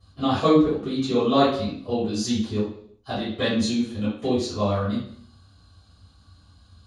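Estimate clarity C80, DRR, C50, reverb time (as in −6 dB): 7.0 dB, −14.5 dB, 2.5 dB, 0.60 s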